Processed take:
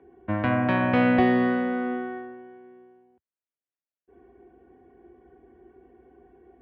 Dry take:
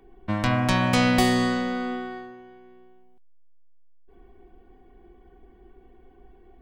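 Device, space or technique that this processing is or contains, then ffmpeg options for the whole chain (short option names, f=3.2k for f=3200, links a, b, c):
bass cabinet: -af "highpass=f=76:w=0.5412,highpass=f=76:w=1.3066,equalizer=f=120:t=q:w=4:g=-7,equalizer=f=190:t=q:w=4:g=-8,equalizer=f=850:t=q:w=4:g=-5,equalizer=f=1.2k:t=q:w=4:g=-6,equalizer=f=2.1k:t=q:w=4:g=-4,lowpass=f=2.2k:w=0.5412,lowpass=f=2.2k:w=1.3066,volume=3dB"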